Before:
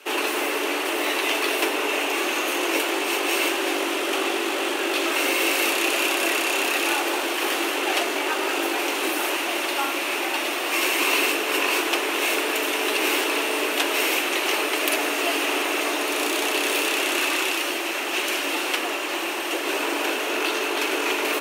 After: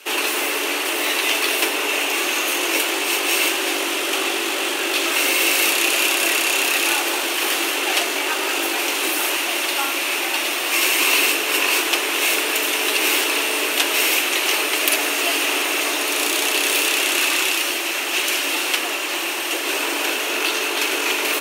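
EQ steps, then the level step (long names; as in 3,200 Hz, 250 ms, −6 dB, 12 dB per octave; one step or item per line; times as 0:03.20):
high-shelf EQ 2,100 Hz +9 dB
−1.0 dB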